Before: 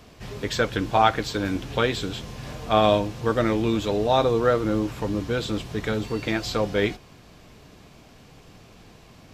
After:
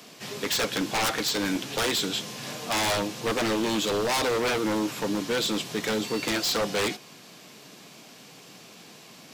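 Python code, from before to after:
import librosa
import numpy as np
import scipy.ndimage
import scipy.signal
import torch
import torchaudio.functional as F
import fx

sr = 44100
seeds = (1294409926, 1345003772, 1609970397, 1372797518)

y = scipy.signal.sosfilt(scipy.signal.butter(4, 160.0, 'highpass', fs=sr, output='sos'), x)
y = fx.high_shelf(y, sr, hz=2600.0, db=10.5)
y = 10.0 ** (-20.0 / 20.0) * (np.abs((y / 10.0 ** (-20.0 / 20.0) + 3.0) % 4.0 - 2.0) - 1.0)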